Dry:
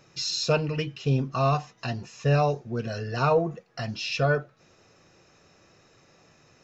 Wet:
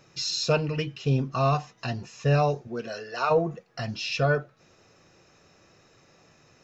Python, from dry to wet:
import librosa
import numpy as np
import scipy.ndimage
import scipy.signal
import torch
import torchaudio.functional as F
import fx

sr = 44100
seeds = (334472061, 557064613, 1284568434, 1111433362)

y = fx.highpass(x, sr, hz=fx.line((2.67, 210.0), (3.29, 630.0)), slope=12, at=(2.67, 3.29), fade=0.02)